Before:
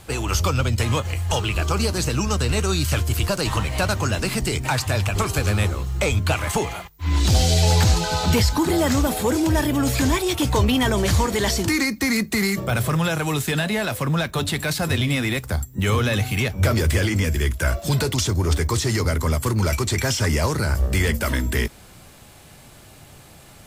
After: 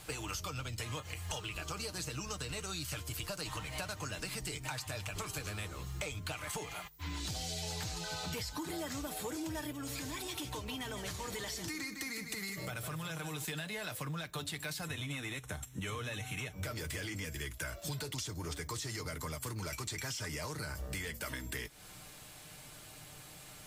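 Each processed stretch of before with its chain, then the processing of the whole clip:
0:09.72–0:13.45: downward compressor 4 to 1, threshold −24 dBFS + single-tap delay 154 ms −9.5 dB
0:14.85–0:16.53: variable-slope delta modulation 64 kbit/s + Butterworth band-reject 4,700 Hz, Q 3.9
whole clip: tilt shelving filter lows −3.5 dB, about 1,100 Hz; comb filter 6.6 ms, depth 43%; downward compressor, threshold −31 dBFS; level −7 dB

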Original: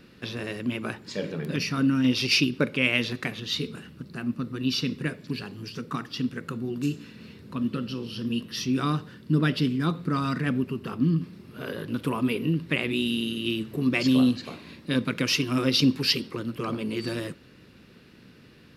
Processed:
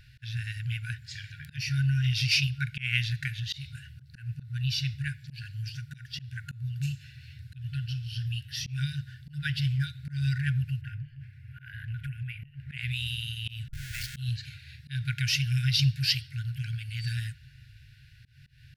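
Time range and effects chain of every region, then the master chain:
0:10.81–0:12.71: high shelf with overshoot 3,000 Hz −10.5 dB, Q 1.5 + downward compressor, threshold −28 dBFS
0:13.68–0:14.17: low-shelf EQ 210 Hz −11 dB + downward compressor, threshold −26 dBFS + comparator with hysteresis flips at −41 dBFS
whole clip: low-shelf EQ 290 Hz +11.5 dB; brick-wall band-stop 140–1,400 Hz; volume swells 164 ms; level −2.5 dB

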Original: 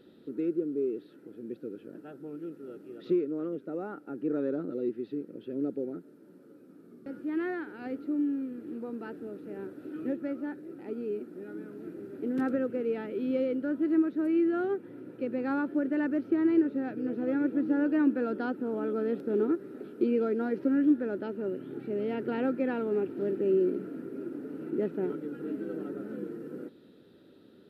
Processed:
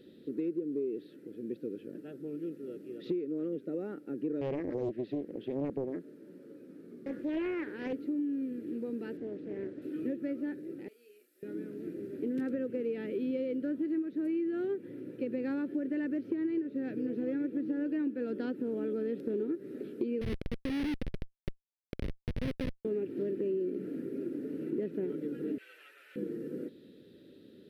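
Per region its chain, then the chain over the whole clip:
0:04.41–0:07.93: parametric band 1,100 Hz +5.5 dB 2.7 octaves + highs frequency-modulated by the lows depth 0.64 ms
0:09.17–0:09.82: high-frequency loss of the air 76 metres + highs frequency-modulated by the lows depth 0.22 ms
0:10.88–0:11.43: high-pass filter 400 Hz + first difference + double-tracking delay 33 ms −6 dB
0:20.21–0:22.85: comparator with hysteresis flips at −25 dBFS + linearly interpolated sample-rate reduction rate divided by 6×
0:25.58–0:26.16: high-pass filter 1,000 Hz 24 dB per octave + parametric band 2,600 Hz +11.5 dB 0.82 octaves
whole clip: flat-topped bell 990 Hz −11.5 dB 1.3 octaves; downward compressor, threshold −32 dBFS; level +1.5 dB

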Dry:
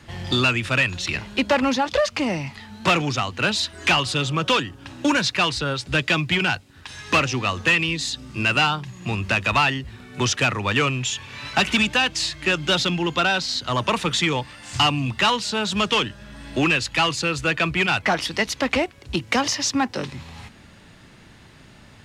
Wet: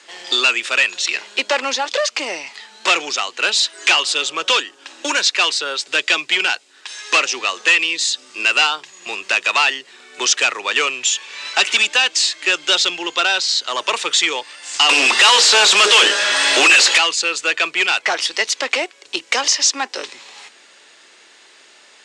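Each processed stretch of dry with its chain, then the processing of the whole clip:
0:14.89–0:16.98: high-shelf EQ 3,400 Hz +9.5 dB + mains-hum notches 60/120/180/240/300/360/420/480/540 Hz + mid-hump overdrive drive 36 dB, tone 2,000 Hz, clips at −6 dBFS
whole clip: Chebyshev band-pass filter 390–8,100 Hz, order 3; high-shelf EQ 2,700 Hz +12 dB

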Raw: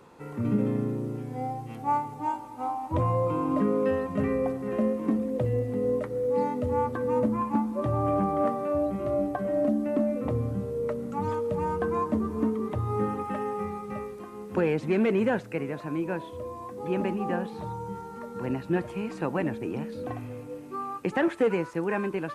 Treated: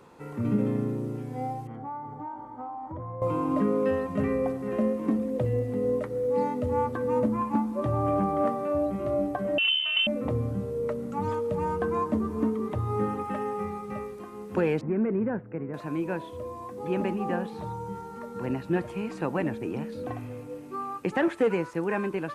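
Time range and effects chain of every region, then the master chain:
0:01.67–0:03.22: Savitzky-Golay smoothing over 41 samples + downward compressor, threshold −34 dBFS
0:09.58–0:10.07: parametric band 2,300 Hz +10.5 dB 0.39 octaves + voice inversion scrambler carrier 3,300 Hz
0:14.81–0:15.74: dynamic equaliser 660 Hz, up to −6 dB, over −37 dBFS, Q 0.86 + Gaussian smoothing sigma 5.6 samples
whole clip: no processing

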